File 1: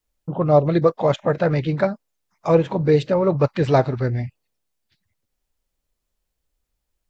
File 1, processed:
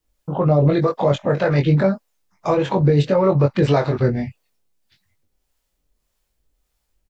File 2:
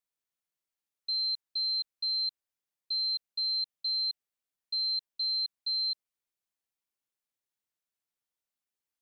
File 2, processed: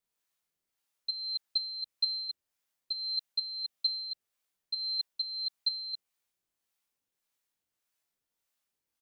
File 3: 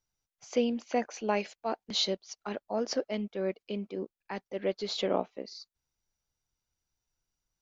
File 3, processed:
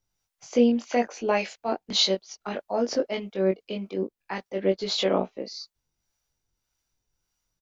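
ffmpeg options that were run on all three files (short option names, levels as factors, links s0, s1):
-filter_complex "[0:a]alimiter=limit=0.2:level=0:latency=1:release=45,acrossover=split=540[s0][s1];[s0]aeval=exprs='val(0)*(1-0.5/2+0.5/2*cos(2*PI*1.7*n/s))':c=same[s2];[s1]aeval=exprs='val(0)*(1-0.5/2-0.5/2*cos(2*PI*1.7*n/s))':c=same[s3];[s2][s3]amix=inputs=2:normalize=0,asplit=2[s4][s5];[s5]adelay=21,volume=0.668[s6];[s4][s6]amix=inputs=2:normalize=0,volume=2.11"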